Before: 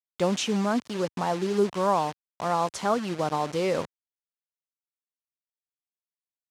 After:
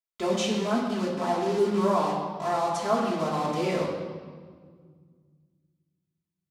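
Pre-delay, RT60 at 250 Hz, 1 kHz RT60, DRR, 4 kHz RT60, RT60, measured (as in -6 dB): 3 ms, 2.7 s, 1.6 s, -6.5 dB, 1.3 s, 1.7 s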